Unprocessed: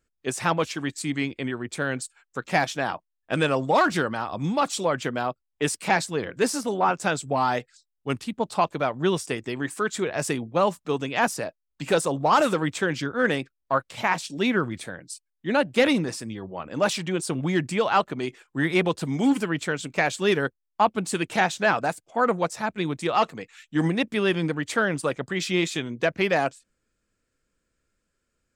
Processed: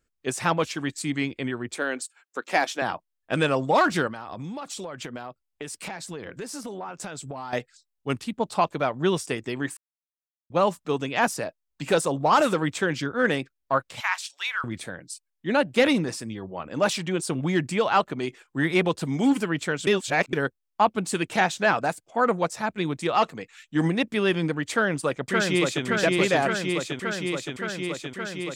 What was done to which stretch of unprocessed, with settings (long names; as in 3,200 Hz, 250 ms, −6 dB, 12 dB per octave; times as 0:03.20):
0:01.75–0:02.82: high-pass filter 260 Hz 24 dB per octave
0:04.07–0:07.53: downward compressor 16 to 1, threshold −31 dBFS
0:09.77–0:10.50: silence
0:14.00–0:14.64: inverse Chebyshev high-pass filter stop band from 240 Hz, stop band 70 dB
0:19.87–0:20.33: reverse
0:24.71–0:25.85: delay throw 570 ms, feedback 80%, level −2 dB